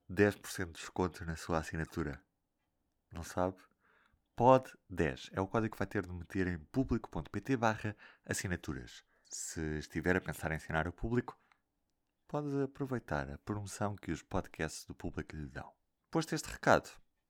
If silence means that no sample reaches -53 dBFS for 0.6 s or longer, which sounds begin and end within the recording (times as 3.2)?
3.12–3.62
4.37–11.52